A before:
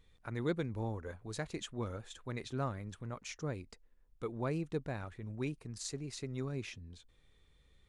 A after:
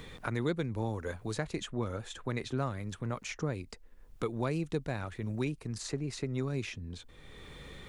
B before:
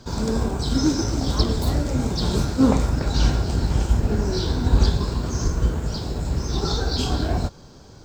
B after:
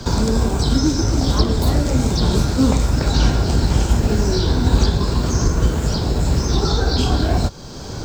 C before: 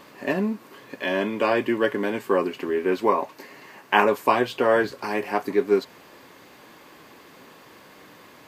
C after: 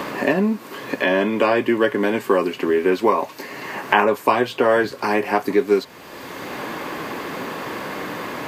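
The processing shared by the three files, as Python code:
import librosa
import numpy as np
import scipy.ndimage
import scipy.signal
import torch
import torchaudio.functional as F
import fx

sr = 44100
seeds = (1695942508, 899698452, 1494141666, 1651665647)

y = fx.band_squash(x, sr, depth_pct=70)
y = F.gain(torch.from_numpy(y), 4.5).numpy()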